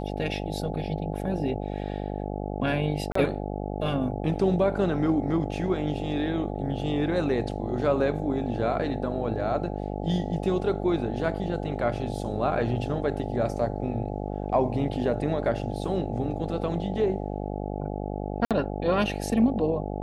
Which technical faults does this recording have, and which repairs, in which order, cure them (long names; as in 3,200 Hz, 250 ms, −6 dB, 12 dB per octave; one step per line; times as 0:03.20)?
mains buzz 50 Hz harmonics 17 −32 dBFS
0:03.12–0:03.15: drop-out 34 ms
0:18.45–0:18.51: drop-out 57 ms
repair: hum removal 50 Hz, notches 17
repair the gap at 0:03.12, 34 ms
repair the gap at 0:18.45, 57 ms